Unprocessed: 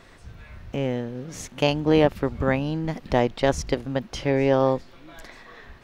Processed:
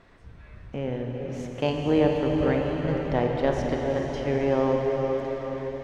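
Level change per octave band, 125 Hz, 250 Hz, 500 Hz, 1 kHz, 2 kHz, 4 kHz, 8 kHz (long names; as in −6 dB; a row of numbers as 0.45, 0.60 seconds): −1.5 dB, −1.0 dB, −1.0 dB, −2.5 dB, −4.0 dB, −6.5 dB, below −10 dB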